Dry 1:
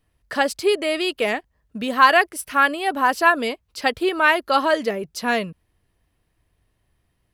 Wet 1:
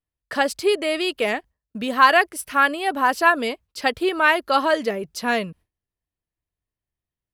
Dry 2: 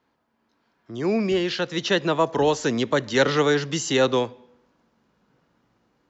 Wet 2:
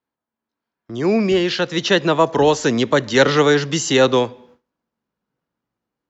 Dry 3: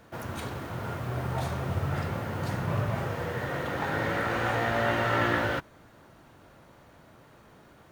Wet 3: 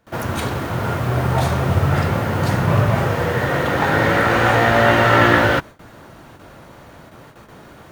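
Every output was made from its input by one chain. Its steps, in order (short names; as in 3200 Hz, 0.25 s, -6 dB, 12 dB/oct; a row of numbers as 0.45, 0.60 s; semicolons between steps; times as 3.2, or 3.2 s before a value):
gate with hold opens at -45 dBFS; normalise peaks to -1.5 dBFS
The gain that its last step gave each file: -0.5, +5.5, +13.0 dB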